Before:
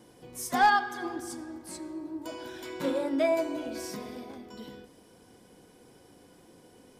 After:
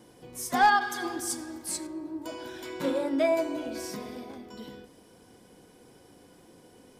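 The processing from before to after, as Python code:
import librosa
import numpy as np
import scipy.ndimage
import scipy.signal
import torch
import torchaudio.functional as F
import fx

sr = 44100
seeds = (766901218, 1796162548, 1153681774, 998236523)

y = fx.high_shelf(x, sr, hz=2700.0, db=11.0, at=(0.81, 1.87))
y = y * 10.0 ** (1.0 / 20.0)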